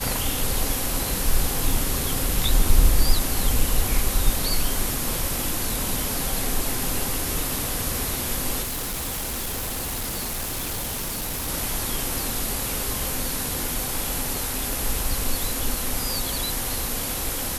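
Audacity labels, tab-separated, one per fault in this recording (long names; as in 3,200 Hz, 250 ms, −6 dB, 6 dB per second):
8.620000	11.490000	clipping −25.5 dBFS
14.730000	14.730000	click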